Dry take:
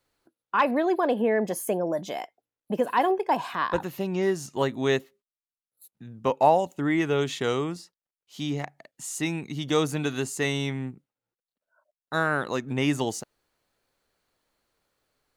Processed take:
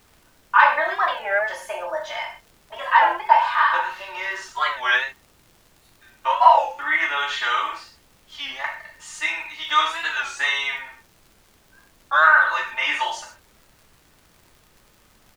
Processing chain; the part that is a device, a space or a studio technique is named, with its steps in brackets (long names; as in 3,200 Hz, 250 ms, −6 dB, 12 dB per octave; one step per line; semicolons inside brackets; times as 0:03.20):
high-pass filter 950 Hz 24 dB per octave
Bessel low-pass filter 2,300 Hz, order 2
comb filter 3.3 ms, depth 87%
reverb whose tail is shaped and stops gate 170 ms falling, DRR −3 dB
warped LP (wow of a warped record 33 1/3 rpm, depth 160 cents; surface crackle; pink noise bed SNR 34 dB)
level +7 dB